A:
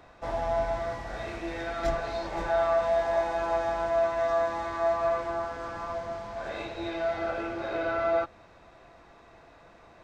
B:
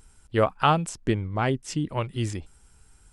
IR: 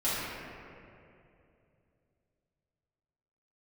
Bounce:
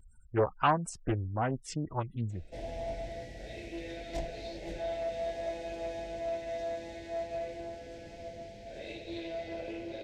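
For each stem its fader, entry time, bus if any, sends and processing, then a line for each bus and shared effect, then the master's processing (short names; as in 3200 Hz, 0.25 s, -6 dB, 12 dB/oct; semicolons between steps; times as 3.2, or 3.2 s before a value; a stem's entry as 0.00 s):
-4.5 dB, 2.30 s, no send, Chebyshev band-stop 550–2300 Hz, order 2; high shelf 7500 Hz +4 dB
-1.5 dB, 0.00 s, no send, spectral gate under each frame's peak -20 dB strong; cascading flanger falling 1.5 Hz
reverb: off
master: Doppler distortion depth 0.57 ms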